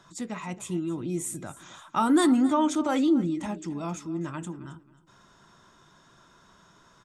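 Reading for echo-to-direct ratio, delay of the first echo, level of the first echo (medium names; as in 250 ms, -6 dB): -17.5 dB, 269 ms, -17.5 dB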